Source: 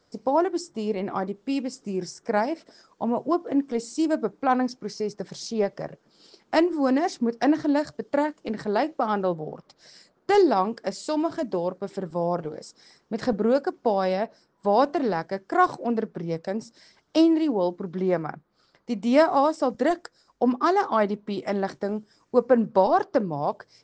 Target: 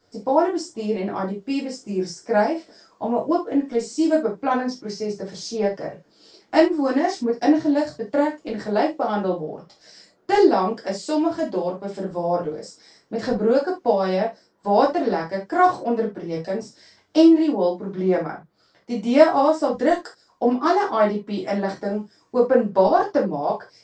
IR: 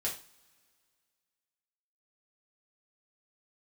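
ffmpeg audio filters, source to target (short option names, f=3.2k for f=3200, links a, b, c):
-filter_complex "[1:a]atrim=start_sample=2205,atrim=end_sample=3969[a];[0:a][a]afir=irnorm=-1:irlink=0,asettb=1/sr,asplit=3[b][c][d];[b]atrim=end=7.404[e];[c]atrim=start=7.4:end=9.44,asetpts=PTS-STARTPTS,afade=t=in:d=0.004:c=qsin,afade=t=out:st=2.036:d=0.004:c=qsin,adynamicequalizer=threshold=0.0178:dfrequency=1400:dqfactor=0.88:tfrequency=1400:tqfactor=0.88:attack=5:release=100:ratio=0.375:range=2:mode=cutabove:tftype=bell[f];[d]atrim=start=9.436[g];[e][f]acrossfade=d=0.004:c1=hsin:c2=qsin[h];[h][g]acrossfade=d=0.004:c1=qsin:c2=hsin"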